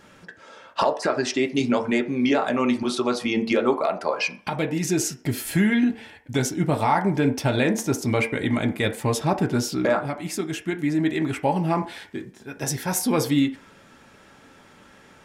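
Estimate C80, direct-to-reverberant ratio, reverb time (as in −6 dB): 18.0 dB, 2.5 dB, 0.50 s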